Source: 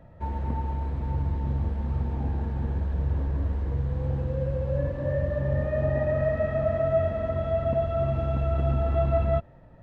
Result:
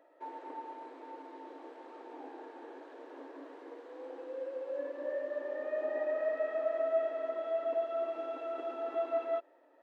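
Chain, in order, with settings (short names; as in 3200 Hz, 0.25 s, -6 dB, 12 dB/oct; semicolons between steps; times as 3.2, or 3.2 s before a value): brick-wall FIR high-pass 270 Hz; gain -6.5 dB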